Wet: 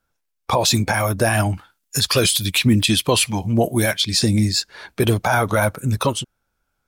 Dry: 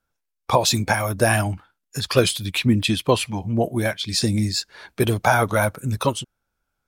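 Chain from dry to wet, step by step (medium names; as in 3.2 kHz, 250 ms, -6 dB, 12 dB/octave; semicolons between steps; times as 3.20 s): 1.54–4.05 s: treble shelf 3.2 kHz +9.5 dB; peak limiter -10.5 dBFS, peak gain reduction 8.5 dB; trim +4 dB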